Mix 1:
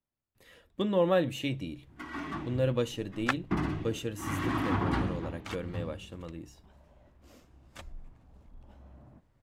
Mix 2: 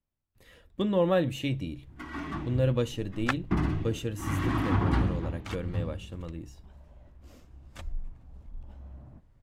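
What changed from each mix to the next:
master: add bass shelf 110 Hz +11.5 dB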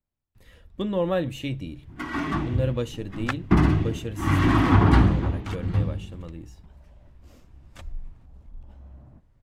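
first sound +9.0 dB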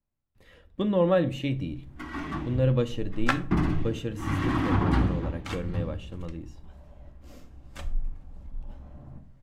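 speech: add treble shelf 5.9 kHz -11.5 dB; first sound -8.0 dB; reverb: on, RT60 0.45 s

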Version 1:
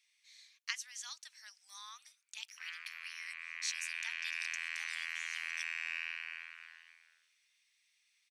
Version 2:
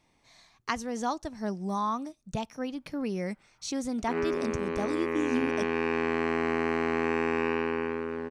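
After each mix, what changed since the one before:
background: entry +1.50 s; master: remove inverse Chebyshev high-pass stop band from 350 Hz, stop band 80 dB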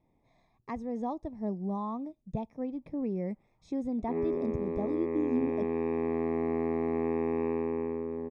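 master: add boxcar filter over 30 samples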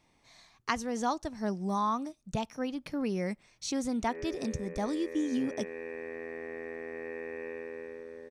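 background: add cascade formant filter e; master: remove boxcar filter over 30 samples

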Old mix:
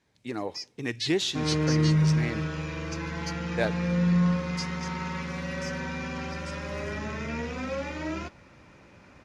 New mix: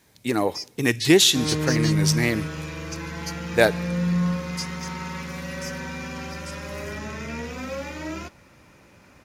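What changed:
speech +10.0 dB; master: remove distance through air 85 m

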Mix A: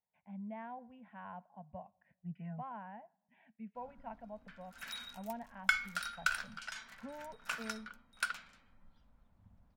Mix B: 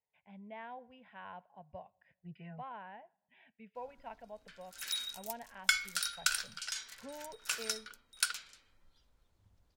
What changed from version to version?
background -4.5 dB; master: remove FFT filter 120 Hz 0 dB, 220 Hz +9 dB, 370 Hz -9 dB, 670 Hz +1 dB, 1.1 kHz 0 dB, 2.3 kHz -6 dB, 4.4 kHz -15 dB, 8.9 kHz -18 dB, 13 kHz -16 dB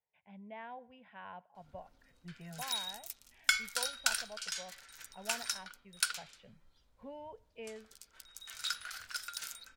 background: entry -2.20 s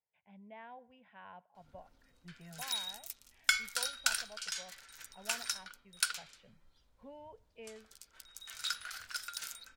speech -4.0 dB

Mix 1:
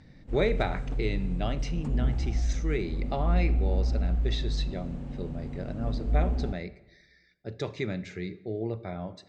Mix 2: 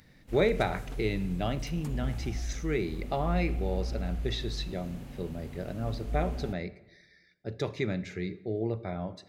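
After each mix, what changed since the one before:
background: add tilt shelf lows -8.5 dB, about 1.3 kHz; master: remove elliptic low-pass 8.4 kHz, stop band 60 dB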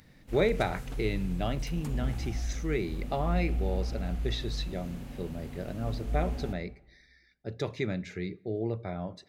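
speech: send -8.5 dB; background: send +11.0 dB

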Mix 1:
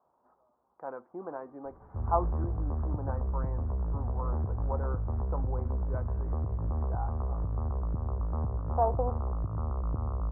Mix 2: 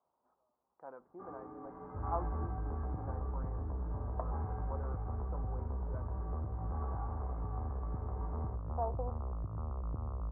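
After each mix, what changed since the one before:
speech -10.0 dB; first sound +11.5 dB; second sound -7.0 dB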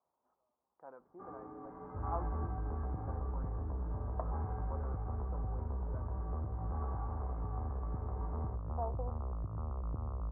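speech -3.0 dB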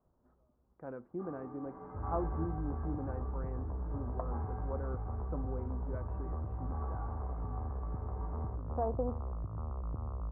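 speech: remove band-pass filter 920 Hz, Q 2.2

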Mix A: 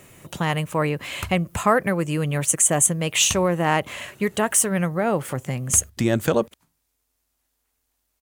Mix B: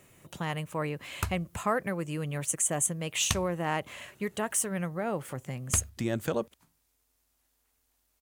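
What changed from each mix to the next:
speech -10.0 dB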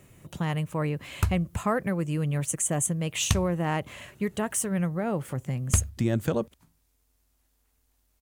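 master: add bass shelf 260 Hz +10 dB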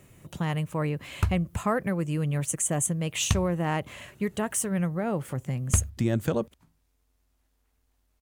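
background: add treble shelf 5.1 kHz -8.5 dB

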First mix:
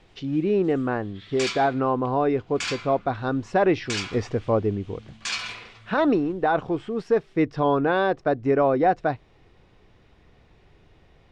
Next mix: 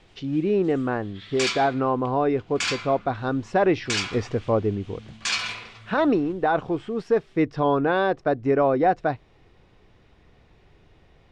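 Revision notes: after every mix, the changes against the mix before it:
background +3.5 dB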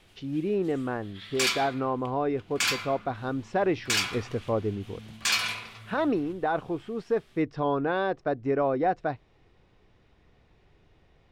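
speech -5.5 dB; background: remove low-pass 7.8 kHz 24 dB/octave

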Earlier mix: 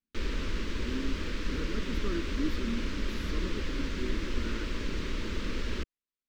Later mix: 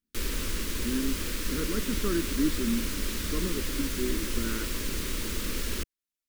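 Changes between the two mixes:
speech +6.5 dB; background: remove distance through air 180 m

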